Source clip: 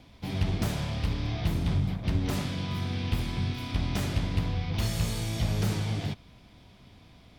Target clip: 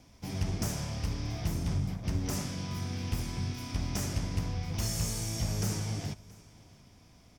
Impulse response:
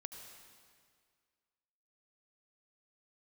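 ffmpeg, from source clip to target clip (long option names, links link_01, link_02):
-filter_complex "[0:a]highshelf=frequency=4700:width_type=q:width=3:gain=6,aecho=1:1:676:0.0708,asplit=2[link_01][link_02];[1:a]atrim=start_sample=2205,afade=type=out:start_time=0.15:duration=0.01,atrim=end_sample=7056[link_03];[link_02][link_03]afir=irnorm=-1:irlink=0,volume=-11.5dB[link_04];[link_01][link_04]amix=inputs=2:normalize=0,volume=-5.5dB"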